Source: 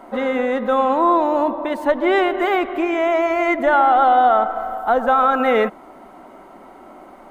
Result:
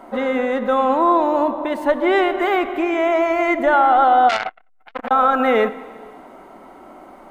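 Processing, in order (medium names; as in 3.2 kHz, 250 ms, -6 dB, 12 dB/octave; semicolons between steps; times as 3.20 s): Schroeder reverb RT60 1.8 s, combs from 27 ms, DRR 14.5 dB; 4.29–5.11 s: transformer saturation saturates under 2.6 kHz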